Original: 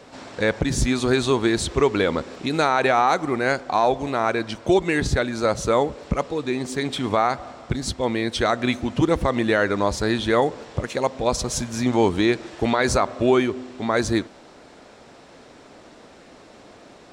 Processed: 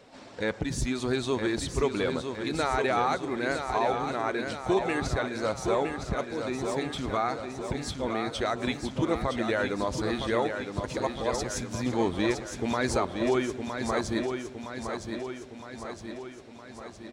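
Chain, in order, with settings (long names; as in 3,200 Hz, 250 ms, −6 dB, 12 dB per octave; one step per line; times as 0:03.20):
spectral magnitudes quantised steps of 15 dB
repeating echo 963 ms, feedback 59%, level −6.5 dB
level −8 dB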